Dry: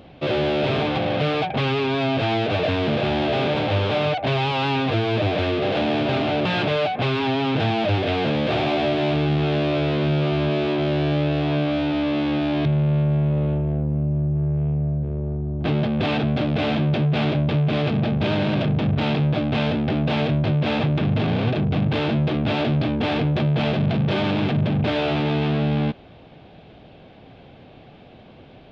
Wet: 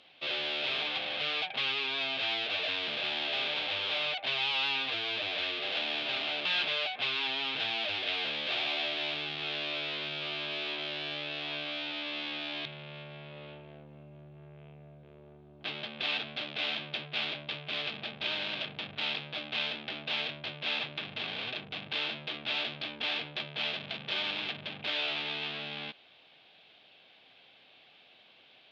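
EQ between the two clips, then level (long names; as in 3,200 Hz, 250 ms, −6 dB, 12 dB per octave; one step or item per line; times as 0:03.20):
resonant band-pass 3,500 Hz, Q 1.4
0.0 dB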